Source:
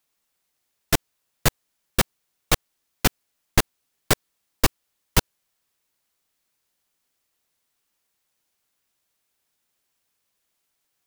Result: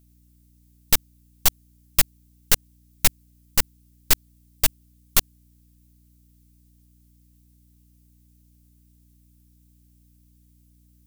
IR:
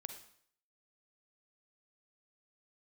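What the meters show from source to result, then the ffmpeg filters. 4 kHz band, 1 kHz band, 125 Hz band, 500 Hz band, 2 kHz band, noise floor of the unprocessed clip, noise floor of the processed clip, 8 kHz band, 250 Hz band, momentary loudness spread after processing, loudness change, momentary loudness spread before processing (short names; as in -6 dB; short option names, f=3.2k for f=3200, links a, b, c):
+1.0 dB, -6.0 dB, -7.0 dB, -9.0 dB, -2.5 dB, -76 dBFS, -58 dBFS, +4.0 dB, -9.5 dB, 2 LU, +2.0 dB, 1 LU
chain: -af "alimiter=limit=-6.5dB:level=0:latency=1:release=54,aeval=exprs='val(0)+0.00794*(sin(2*PI*60*n/s)+sin(2*PI*2*60*n/s)/2+sin(2*PI*3*60*n/s)/3+sin(2*PI*4*60*n/s)/4+sin(2*PI*5*60*n/s)/5)':c=same,crystalizer=i=9:c=0,aeval=exprs='3.98*(cos(1*acos(clip(val(0)/3.98,-1,1)))-cos(1*PI/2))+0.447*(cos(3*acos(clip(val(0)/3.98,-1,1)))-cos(3*PI/2))+0.447*(cos(5*acos(clip(val(0)/3.98,-1,1)))-cos(5*PI/2))+1.41*(cos(7*acos(clip(val(0)/3.98,-1,1)))-cos(7*PI/2))+1.26*(cos(8*acos(clip(val(0)/3.98,-1,1)))-cos(8*PI/2))':c=same,volume=-16.5dB"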